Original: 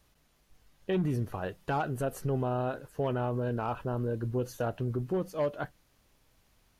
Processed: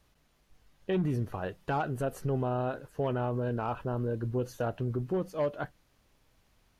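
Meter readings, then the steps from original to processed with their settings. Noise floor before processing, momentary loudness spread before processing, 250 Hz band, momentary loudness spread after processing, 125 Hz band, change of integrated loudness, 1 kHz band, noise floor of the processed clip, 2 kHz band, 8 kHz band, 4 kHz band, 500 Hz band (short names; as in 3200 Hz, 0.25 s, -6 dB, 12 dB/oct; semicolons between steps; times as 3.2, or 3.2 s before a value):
-69 dBFS, 5 LU, 0.0 dB, 5 LU, 0.0 dB, 0.0 dB, 0.0 dB, -69 dBFS, -0.5 dB, -3.0 dB, -1.0 dB, 0.0 dB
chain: high shelf 6600 Hz -5.5 dB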